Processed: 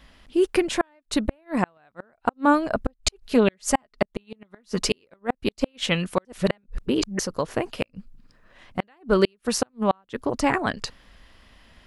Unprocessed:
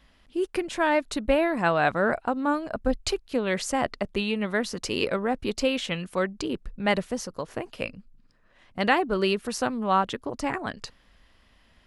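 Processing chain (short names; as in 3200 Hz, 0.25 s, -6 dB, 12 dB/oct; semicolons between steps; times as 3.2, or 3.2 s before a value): 2.98–4.98 comb 4.8 ms, depth 56%; 6.25–7.19 reverse; flipped gate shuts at -14 dBFS, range -42 dB; gain +7 dB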